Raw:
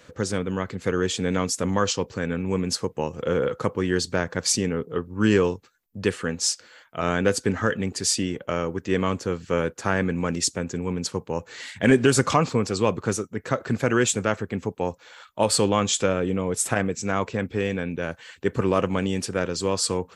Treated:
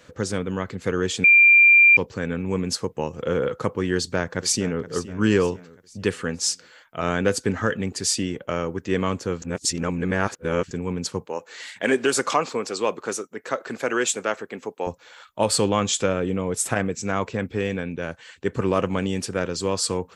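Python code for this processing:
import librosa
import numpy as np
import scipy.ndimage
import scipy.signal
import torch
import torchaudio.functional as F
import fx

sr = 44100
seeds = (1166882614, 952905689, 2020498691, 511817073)

y = fx.echo_throw(x, sr, start_s=3.95, length_s=0.9, ms=470, feedback_pct=45, wet_db=-14.5)
y = fx.highpass(y, sr, hz=360.0, slope=12, at=(11.26, 14.87))
y = fx.cheby1_lowpass(y, sr, hz=9300.0, order=2, at=(17.81, 18.63))
y = fx.edit(y, sr, fx.bleep(start_s=1.24, length_s=0.73, hz=2380.0, db=-9.5),
    fx.reverse_span(start_s=9.42, length_s=1.29), tone=tone)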